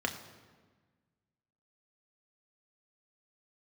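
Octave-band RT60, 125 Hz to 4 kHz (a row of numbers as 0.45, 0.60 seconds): 1.9, 1.9, 1.5, 1.4, 1.3, 1.0 seconds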